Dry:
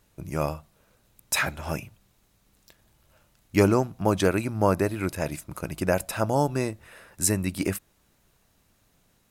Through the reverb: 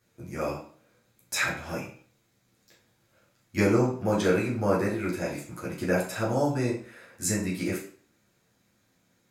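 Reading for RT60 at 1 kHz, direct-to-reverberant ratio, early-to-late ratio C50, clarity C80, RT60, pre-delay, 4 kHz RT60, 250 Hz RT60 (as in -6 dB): 0.45 s, -7.5 dB, 5.5 dB, 10.0 dB, 0.50 s, 8 ms, 0.40 s, 0.45 s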